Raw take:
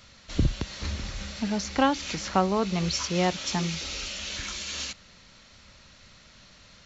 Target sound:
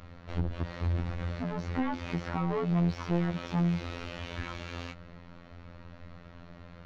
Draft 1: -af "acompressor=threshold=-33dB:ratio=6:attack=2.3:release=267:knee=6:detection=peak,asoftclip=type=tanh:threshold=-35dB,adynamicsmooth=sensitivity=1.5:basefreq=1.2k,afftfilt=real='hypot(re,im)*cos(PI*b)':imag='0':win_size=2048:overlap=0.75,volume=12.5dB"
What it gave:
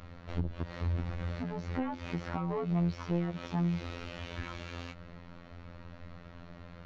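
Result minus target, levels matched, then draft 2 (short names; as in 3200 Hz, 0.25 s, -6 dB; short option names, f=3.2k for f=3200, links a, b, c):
compressor: peak gain reduction +9 dB
-af "acompressor=threshold=-22dB:ratio=6:attack=2.3:release=267:knee=6:detection=peak,asoftclip=type=tanh:threshold=-35dB,adynamicsmooth=sensitivity=1.5:basefreq=1.2k,afftfilt=real='hypot(re,im)*cos(PI*b)':imag='0':win_size=2048:overlap=0.75,volume=12.5dB"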